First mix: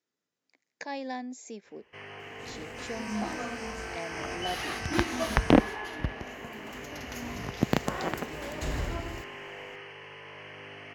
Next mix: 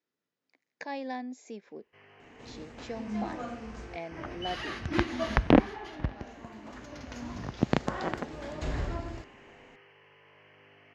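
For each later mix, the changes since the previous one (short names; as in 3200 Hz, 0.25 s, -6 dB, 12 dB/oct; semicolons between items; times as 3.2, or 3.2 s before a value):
first sound -12.0 dB; master: add air absorption 110 m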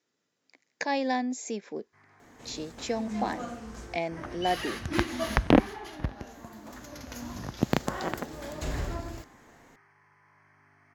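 speech +8.0 dB; first sound: add fixed phaser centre 1200 Hz, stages 4; master: remove air absorption 110 m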